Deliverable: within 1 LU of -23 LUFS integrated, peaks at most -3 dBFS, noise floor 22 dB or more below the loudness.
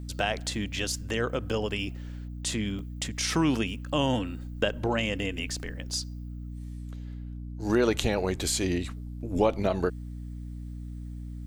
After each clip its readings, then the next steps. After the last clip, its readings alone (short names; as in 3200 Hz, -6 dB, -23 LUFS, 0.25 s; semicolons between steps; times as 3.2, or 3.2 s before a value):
dropouts 1; longest dropout 1.2 ms; hum 60 Hz; harmonics up to 300 Hz; hum level -35 dBFS; loudness -29.0 LUFS; peak -7.5 dBFS; loudness target -23.0 LUFS
-> interpolate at 2.79, 1.2 ms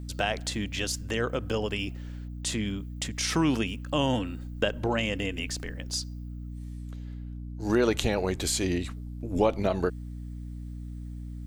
dropouts 0; hum 60 Hz; harmonics up to 300 Hz; hum level -35 dBFS
-> de-hum 60 Hz, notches 5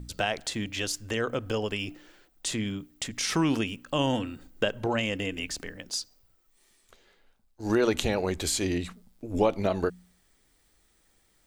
hum none; loudness -29.5 LUFS; peak -7.0 dBFS; loudness target -23.0 LUFS
-> gain +6.5 dB; limiter -3 dBFS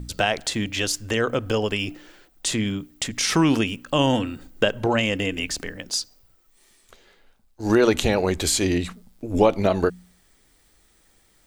loudness -23.0 LUFS; peak -3.0 dBFS; noise floor -61 dBFS